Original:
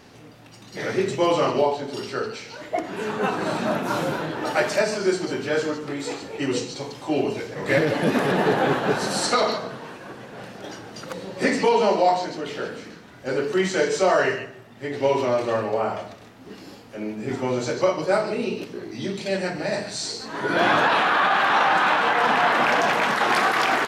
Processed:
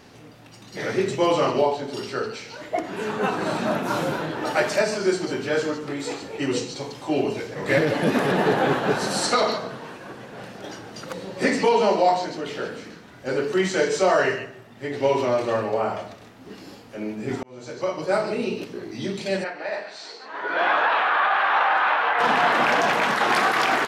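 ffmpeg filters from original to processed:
-filter_complex "[0:a]asplit=3[s0][s1][s2];[s0]afade=t=out:st=19.43:d=0.02[s3];[s1]highpass=590,lowpass=2700,afade=t=in:st=19.43:d=0.02,afade=t=out:st=22.18:d=0.02[s4];[s2]afade=t=in:st=22.18:d=0.02[s5];[s3][s4][s5]amix=inputs=3:normalize=0,asplit=2[s6][s7];[s6]atrim=end=17.43,asetpts=PTS-STARTPTS,afade=t=out:st=17.426:d=0.004:c=hsin[s8];[s7]atrim=start=17.43,asetpts=PTS-STARTPTS,afade=t=in:d=0.83[s9];[s8][s9]concat=n=2:v=0:a=1"

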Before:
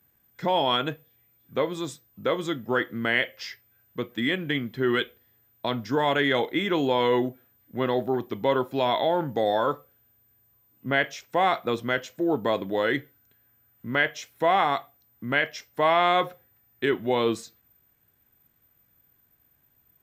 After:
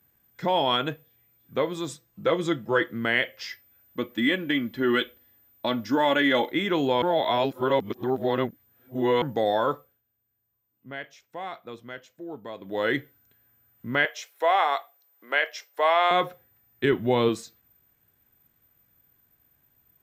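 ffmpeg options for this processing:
-filter_complex "[0:a]asettb=1/sr,asplit=3[s0][s1][s2];[s0]atrim=end=1.894[s3];[s1]atrim=start=1.89:end=2.87,asetpts=PTS-STARTPTS,afade=t=in:d=0.004:c=qsin,afade=t=out:st=0.976:d=0.004:c=qsin,aecho=1:1:6:0.57,atrim=end_sample=43218[s4];[s2]atrim=start=2.866[s5];[s3][s4]acrossfade=d=0.004:c1=hsin:c2=qsin[s6];[s6][s5]acrossfade=d=0.004:c1=qsin:c2=hsin,asettb=1/sr,asplit=3[s7][s8][s9];[s7]atrim=end=3.494[s10];[s8]atrim=start=3.49:end=6.51,asetpts=PTS-STARTPTS,afade=t=in:d=0.004:c=qsin,afade=t=out:st=3.016:d=0.004:c=qsin,aecho=1:1:3.5:0.59,atrim=end_sample=133182[s11];[s9]atrim=start=6.506[s12];[s10][s11]acrossfade=d=0.004:c1=hsin:c2=qsin[s13];[s13][s12]acrossfade=d=0.004:c1=qsin:c2=hsin,asettb=1/sr,asplit=3[s14][s15][s16];[s14]atrim=end=14.054[s17];[s15]atrim=start=14.05:end=16.11,asetpts=PTS-STARTPTS,afade=t=in:d=0.004:c=qsin,afade=t=out:st=2.056:d=0.004:c=qsin,highpass=f=430:w=0.5412,highpass=f=430:w=1.3066[s18];[s16]atrim=start=16.106[s19];[s17][s18]acrossfade=d=0.004:c1=hsin:c2=qsin[s20];[s20][s19]acrossfade=d=0.004:c1=qsin:c2=hsin,asettb=1/sr,asplit=3[s21][s22][s23];[s21]atrim=end=16.844[s24];[s22]atrim=start=16.84:end=17.29,asetpts=PTS-STARTPTS,afade=t=in:d=0.004:c=qsin,afade=t=out:st=0.446:d=0.004:c=qsin,lowshelf=f=170:g=11[s25];[s23]atrim=start=17.286[s26];[s24][s25]acrossfade=d=0.004:c1=hsin:c2=qsin[s27];[s27][s26]acrossfade=d=0.004:c1=qsin:c2=hsin,asplit=5[s28][s29][s30][s31][s32];[s28]atrim=end=7.022[s33];[s29]atrim=start=7.018:end=9.222,asetpts=PTS-STARTPTS,areverse[s34];[s30]atrim=start=9.218:end=10.02,asetpts=PTS-STARTPTS,afade=t=out:st=0.512:d=0.29:silence=0.211349[s35];[s31]atrim=start=10.02:end=12.59,asetpts=PTS-STARTPTS,volume=0.211[s36];[s32]atrim=start=12.59,asetpts=PTS-STARTPTS,afade=t=in:d=0.29:silence=0.211349[s37];[s33][s34]acrossfade=d=0.004:c1=hsin:c2=hsin[s38];[s35][s36][s37]concat=n=3:v=0:a=1[s39];[s38][s39]acrossfade=d=0.004:c1=hsin:c2=hsin"

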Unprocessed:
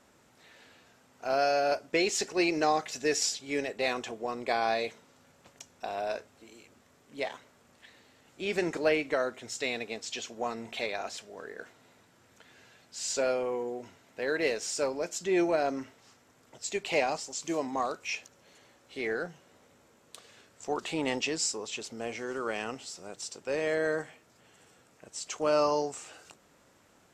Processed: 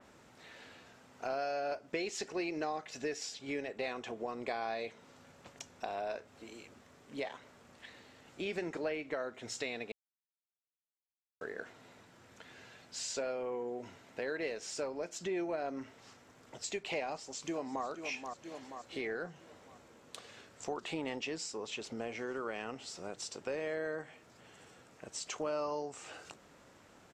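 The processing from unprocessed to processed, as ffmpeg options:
-filter_complex "[0:a]asplit=2[s0][s1];[s1]afade=t=in:st=17.07:d=0.01,afade=t=out:st=17.85:d=0.01,aecho=0:1:480|960|1440|1920|2400:0.251189|0.113035|0.0508657|0.0228896|0.0103003[s2];[s0][s2]amix=inputs=2:normalize=0,asplit=3[s3][s4][s5];[s3]atrim=end=9.92,asetpts=PTS-STARTPTS,afade=t=out:st=9.916:d=0.004:c=hsin[s6];[s4]atrim=start=9.92:end=11.41,asetpts=PTS-STARTPTS,volume=0[s7];[s5]atrim=start=11.41,asetpts=PTS-STARTPTS,afade=t=in:d=0.004:c=hsin[s8];[s6][s7][s8]concat=n=3:v=0:a=1,highshelf=f=8900:g=-10.5,acompressor=threshold=0.00891:ratio=3,adynamicequalizer=threshold=0.00158:dfrequency=3800:dqfactor=0.7:tfrequency=3800:tqfactor=0.7:attack=5:release=100:ratio=0.375:range=2.5:mode=cutabove:tftype=highshelf,volume=1.41"

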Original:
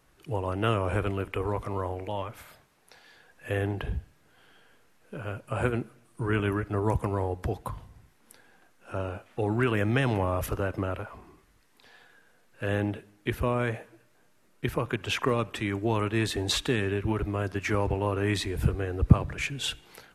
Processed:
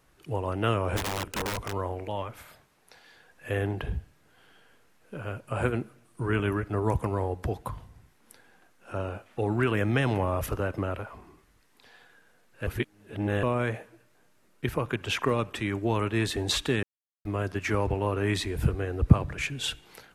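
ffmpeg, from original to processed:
-filter_complex "[0:a]asplit=3[s0][s1][s2];[s0]afade=t=out:st=0.96:d=0.02[s3];[s1]aeval=exprs='(mod(17.8*val(0)+1,2)-1)/17.8':c=same,afade=t=in:st=0.96:d=0.02,afade=t=out:st=1.71:d=0.02[s4];[s2]afade=t=in:st=1.71:d=0.02[s5];[s3][s4][s5]amix=inputs=3:normalize=0,asplit=5[s6][s7][s8][s9][s10];[s6]atrim=end=12.672[s11];[s7]atrim=start=12.668:end=13.432,asetpts=PTS-STARTPTS,areverse[s12];[s8]atrim=start=13.428:end=16.83,asetpts=PTS-STARTPTS,afade=t=out:st=3.398:d=0.004:c=hsin[s13];[s9]atrim=start=16.83:end=17.25,asetpts=PTS-STARTPTS,volume=0[s14];[s10]atrim=start=17.25,asetpts=PTS-STARTPTS,afade=t=in:d=0.004:c=hsin[s15];[s11][s12]acrossfade=d=0.004:c1=hsin:c2=hsin[s16];[s13][s14][s15]concat=n=3:v=0:a=1[s17];[s16][s17]acrossfade=d=0.004:c1=hsin:c2=hsin"

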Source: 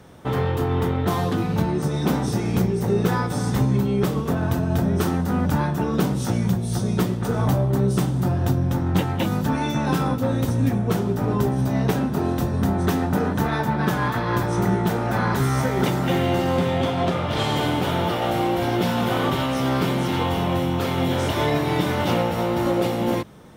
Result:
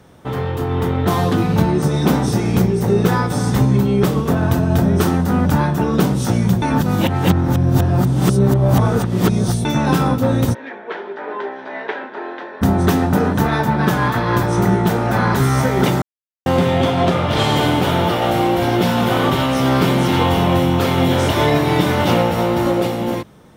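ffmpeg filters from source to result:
-filter_complex "[0:a]asplit=3[s0][s1][s2];[s0]afade=t=out:st=10.53:d=0.02[s3];[s1]highpass=f=480:w=0.5412,highpass=f=480:w=1.3066,equalizer=f=510:t=q:w=4:g=-7,equalizer=f=720:t=q:w=4:g=-9,equalizer=f=1200:t=q:w=4:g=-9,equalizer=f=1700:t=q:w=4:g=4,equalizer=f=2700:t=q:w=4:g=-6,lowpass=f=2900:w=0.5412,lowpass=f=2900:w=1.3066,afade=t=in:st=10.53:d=0.02,afade=t=out:st=12.61:d=0.02[s4];[s2]afade=t=in:st=12.61:d=0.02[s5];[s3][s4][s5]amix=inputs=3:normalize=0,asplit=5[s6][s7][s8][s9][s10];[s6]atrim=end=6.622[s11];[s7]atrim=start=6.618:end=9.652,asetpts=PTS-STARTPTS,areverse[s12];[s8]atrim=start=9.648:end=16.02,asetpts=PTS-STARTPTS,afade=t=out:st=6.368:d=0.004:c=hsin[s13];[s9]atrim=start=16.02:end=16.46,asetpts=PTS-STARTPTS,volume=0[s14];[s10]atrim=start=16.46,asetpts=PTS-STARTPTS,afade=t=in:d=0.004:c=hsin[s15];[s11][s12]acrossfade=d=0.004:c1=hsin:c2=hsin[s16];[s13][s14][s15]concat=n=3:v=0:a=1[s17];[s16][s17]acrossfade=d=0.004:c1=hsin:c2=hsin,dynaudnorm=f=110:g=17:m=2.82"

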